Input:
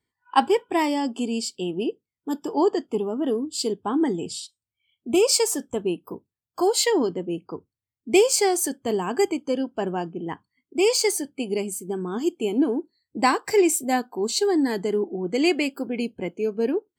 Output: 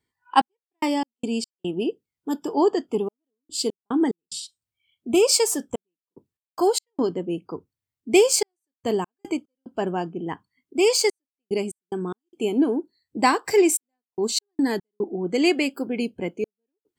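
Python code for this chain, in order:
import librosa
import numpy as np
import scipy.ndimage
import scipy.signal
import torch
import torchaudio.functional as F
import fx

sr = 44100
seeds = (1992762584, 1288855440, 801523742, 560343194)

y = fx.step_gate(x, sr, bpm=73, pattern='xx..x.x.xxxxx', floor_db=-60.0, edge_ms=4.5)
y = y * librosa.db_to_amplitude(1.0)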